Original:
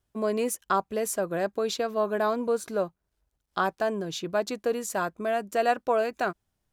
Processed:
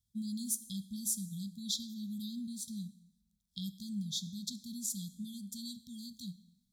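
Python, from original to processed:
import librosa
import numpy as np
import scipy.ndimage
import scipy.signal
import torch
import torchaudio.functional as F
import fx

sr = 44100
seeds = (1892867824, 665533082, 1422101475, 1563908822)

y = fx.brickwall_bandstop(x, sr, low_hz=240.0, high_hz=3200.0)
y = fx.low_shelf(y, sr, hz=77.0, db=-9.5)
y = fx.rev_plate(y, sr, seeds[0], rt60_s=0.95, hf_ratio=0.85, predelay_ms=0, drr_db=12.5)
y = y * librosa.db_to_amplitude(-1.0)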